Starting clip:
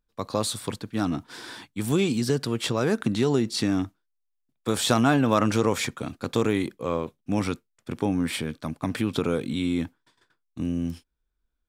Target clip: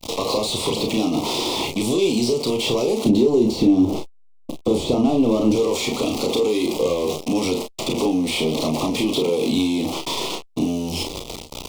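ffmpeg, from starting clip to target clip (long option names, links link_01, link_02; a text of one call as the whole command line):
ffmpeg -i in.wav -filter_complex "[0:a]aeval=exprs='val(0)+0.5*0.0211*sgn(val(0))':channel_layout=same,acompressor=threshold=-27dB:ratio=6,asplit=2[link_01][link_02];[link_02]highpass=frequency=720:poles=1,volume=26dB,asoftclip=type=tanh:threshold=-14.5dB[link_03];[link_01][link_03]amix=inputs=2:normalize=0,lowpass=frequency=6800:poles=1,volume=-6dB,adynamicequalizer=threshold=0.0141:dfrequency=390:dqfactor=1.5:tfrequency=390:tqfactor=1.5:attack=5:release=100:ratio=0.375:range=3:mode=boostabove:tftype=bell,acrossover=split=2900|7400[link_04][link_05][link_06];[link_04]acompressor=threshold=-23dB:ratio=4[link_07];[link_05]acompressor=threshold=-34dB:ratio=4[link_08];[link_06]acompressor=threshold=-45dB:ratio=4[link_09];[link_07][link_08][link_09]amix=inputs=3:normalize=0,asettb=1/sr,asplit=3[link_10][link_11][link_12];[link_10]atrim=end=3.044[link_13];[link_11]atrim=start=3.04:end=5.56,asetpts=PTS-STARTPTS,afade=type=in:duration=0.004:curve=qsin,afade=type=out:start_time=2.516:duration=0.004:curve=qsin,tiltshelf=frequency=690:gain=7.5[link_14];[link_12]atrim=start=5.556[link_15];[link_13][link_14]acrossfade=duration=0.004:curve1=hsin:curve2=qsin[link_16];[link_16][link_15]acrossfade=duration=0.004:curve1=qsin:curve2=hsin,agate=range=-19dB:threshold=-32dB:ratio=16:detection=peak,asuperstop=centerf=1600:order=4:qfactor=0.98,aecho=1:1:33|46:0.562|0.299,volume=3.5dB" out.wav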